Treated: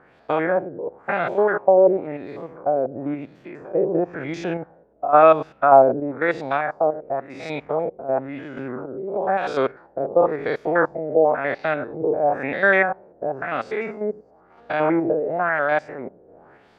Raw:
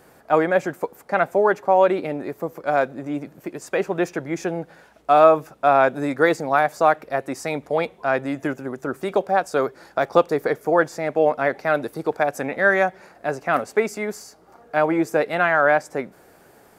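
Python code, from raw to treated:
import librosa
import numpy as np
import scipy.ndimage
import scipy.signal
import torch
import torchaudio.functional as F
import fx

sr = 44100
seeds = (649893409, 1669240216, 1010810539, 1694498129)

y = fx.spec_steps(x, sr, hold_ms=100)
y = fx.filter_lfo_lowpass(y, sr, shape='sine', hz=0.97, low_hz=460.0, high_hz=3900.0, q=2.2)
y = fx.tremolo_random(y, sr, seeds[0], hz=3.5, depth_pct=55)
y = y * librosa.db_to_amplitude(2.0)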